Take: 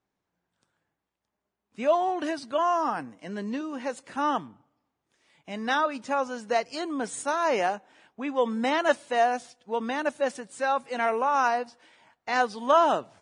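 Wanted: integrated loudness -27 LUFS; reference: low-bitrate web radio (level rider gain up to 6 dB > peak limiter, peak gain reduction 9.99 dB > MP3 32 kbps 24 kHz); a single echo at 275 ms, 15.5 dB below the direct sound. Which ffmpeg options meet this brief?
-af "aecho=1:1:275:0.168,dynaudnorm=m=2,alimiter=limit=0.106:level=0:latency=1,volume=1.58" -ar 24000 -c:a libmp3lame -b:a 32k

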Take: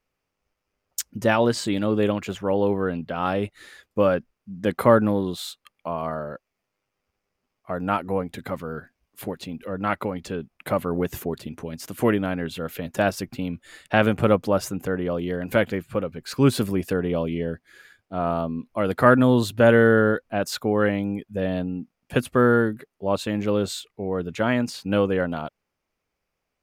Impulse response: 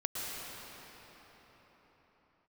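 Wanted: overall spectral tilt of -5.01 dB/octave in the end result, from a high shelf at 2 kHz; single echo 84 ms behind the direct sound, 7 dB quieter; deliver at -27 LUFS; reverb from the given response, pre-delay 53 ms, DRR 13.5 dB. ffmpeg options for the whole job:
-filter_complex "[0:a]highshelf=f=2000:g=6.5,aecho=1:1:84:0.447,asplit=2[s0][s1];[1:a]atrim=start_sample=2205,adelay=53[s2];[s1][s2]afir=irnorm=-1:irlink=0,volume=0.119[s3];[s0][s3]amix=inputs=2:normalize=0,volume=0.596"

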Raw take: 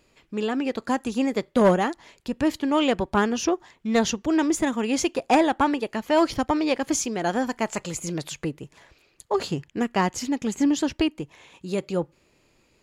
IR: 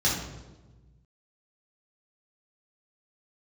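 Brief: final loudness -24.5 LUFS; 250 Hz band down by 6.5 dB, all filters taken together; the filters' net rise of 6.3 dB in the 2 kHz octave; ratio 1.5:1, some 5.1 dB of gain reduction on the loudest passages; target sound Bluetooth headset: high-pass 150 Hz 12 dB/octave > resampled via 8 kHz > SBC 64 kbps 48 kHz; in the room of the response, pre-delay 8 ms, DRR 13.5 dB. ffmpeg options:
-filter_complex "[0:a]equalizer=f=250:t=o:g=-8,equalizer=f=2000:t=o:g=8,acompressor=threshold=0.0398:ratio=1.5,asplit=2[s0][s1];[1:a]atrim=start_sample=2205,adelay=8[s2];[s1][s2]afir=irnorm=-1:irlink=0,volume=0.0531[s3];[s0][s3]amix=inputs=2:normalize=0,highpass=150,aresample=8000,aresample=44100,volume=1.68" -ar 48000 -c:a sbc -b:a 64k

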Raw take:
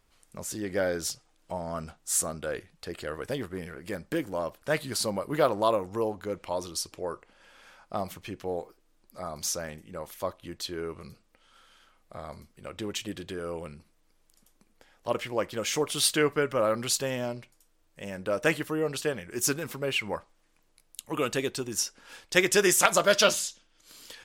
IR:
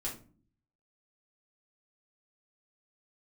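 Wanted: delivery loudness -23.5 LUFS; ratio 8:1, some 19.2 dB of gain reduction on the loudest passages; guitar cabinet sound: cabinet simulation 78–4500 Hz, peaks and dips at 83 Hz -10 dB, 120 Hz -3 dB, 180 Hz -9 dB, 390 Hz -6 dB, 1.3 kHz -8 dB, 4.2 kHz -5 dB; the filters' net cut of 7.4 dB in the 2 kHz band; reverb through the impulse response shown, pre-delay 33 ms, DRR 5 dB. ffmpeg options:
-filter_complex "[0:a]equalizer=f=2000:t=o:g=-7.5,acompressor=threshold=0.0112:ratio=8,asplit=2[s0][s1];[1:a]atrim=start_sample=2205,adelay=33[s2];[s1][s2]afir=irnorm=-1:irlink=0,volume=0.501[s3];[s0][s3]amix=inputs=2:normalize=0,highpass=78,equalizer=f=83:t=q:w=4:g=-10,equalizer=f=120:t=q:w=4:g=-3,equalizer=f=180:t=q:w=4:g=-9,equalizer=f=390:t=q:w=4:g=-6,equalizer=f=1300:t=q:w=4:g=-8,equalizer=f=4200:t=q:w=4:g=-5,lowpass=f=4500:w=0.5412,lowpass=f=4500:w=1.3066,volume=12.6"

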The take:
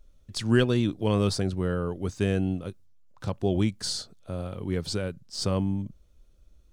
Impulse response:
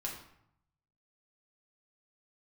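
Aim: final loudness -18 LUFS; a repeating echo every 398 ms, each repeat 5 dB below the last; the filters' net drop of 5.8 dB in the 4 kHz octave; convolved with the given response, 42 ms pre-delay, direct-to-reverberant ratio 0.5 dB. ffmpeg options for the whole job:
-filter_complex "[0:a]equalizer=f=4000:t=o:g=-7.5,aecho=1:1:398|796|1194|1592|1990|2388|2786:0.562|0.315|0.176|0.0988|0.0553|0.031|0.0173,asplit=2[s0][s1];[1:a]atrim=start_sample=2205,adelay=42[s2];[s1][s2]afir=irnorm=-1:irlink=0,volume=0.841[s3];[s0][s3]amix=inputs=2:normalize=0,volume=2"

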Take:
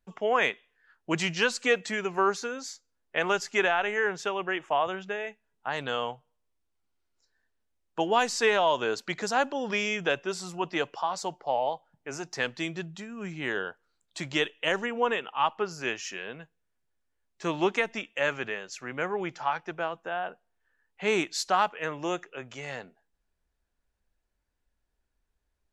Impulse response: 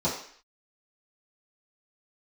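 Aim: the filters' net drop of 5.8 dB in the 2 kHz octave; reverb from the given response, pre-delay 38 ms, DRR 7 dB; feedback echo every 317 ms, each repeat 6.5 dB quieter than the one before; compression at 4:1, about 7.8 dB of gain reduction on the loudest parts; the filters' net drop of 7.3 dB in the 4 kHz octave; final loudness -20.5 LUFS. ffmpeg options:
-filter_complex "[0:a]equalizer=f=2000:t=o:g=-5.5,equalizer=f=4000:t=o:g=-8,acompressor=threshold=0.0316:ratio=4,aecho=1:1:317|634|951|1268|1585|1902:0.473|0.222|0.105|0.0491|0.0231|0.0109,asplit=2[s0][s1];[1:a]atrim=start_sample=2205,adelay=38[s2];[s1][s2]afir=irnorm=-1:irlink=0,volume=0.133[s3];[s0][s3]amix=inputs=2:normalize=0,volume=4.47"

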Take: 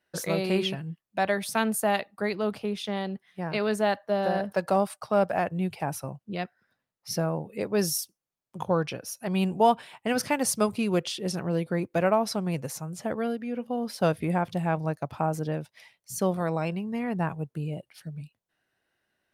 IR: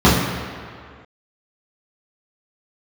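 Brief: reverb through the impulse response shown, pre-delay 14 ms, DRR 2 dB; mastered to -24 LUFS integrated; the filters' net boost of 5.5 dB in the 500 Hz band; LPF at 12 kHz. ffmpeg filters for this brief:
-filter_complex "[0:a]lowpass=12000,equalizer=f=500:t=o:g=7,asplit=2[s0][s1];[1:a]atrim=start_sample=2205,adelay=14[s2];[s1][s2]afir=irnorm=-1:irlink=0,volume=0.0335[s3];[s0][s3]amix=inputs=2:normalize=0,volume=0.596"

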